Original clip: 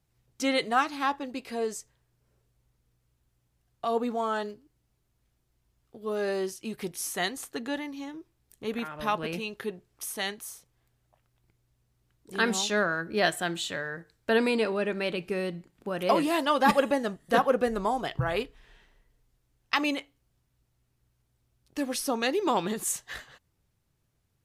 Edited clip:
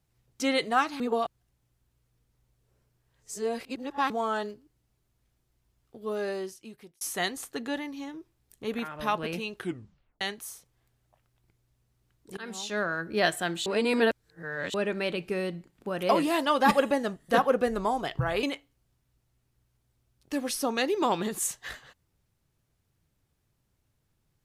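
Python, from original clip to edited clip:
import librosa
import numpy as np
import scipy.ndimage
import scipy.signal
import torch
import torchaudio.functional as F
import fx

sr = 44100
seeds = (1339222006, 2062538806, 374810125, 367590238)

y = fx.edit(x, sr, fx.reverse_span(start_s=1.0, length_s=3.1),
    fx.fade_out_span(start_s=6.02, length_s=0.99),
    fx.tape_stop(start_s=9.57, length_s=0.64),
    fx.fade_in_from(start_s=12.37, length_s=0.7, floor_db=-21.5),
    fx.reverse_span(start_s=13.66, length_s=1.08),
    fx.cut(start_s=18.43, length_s=1.45), tone=tone)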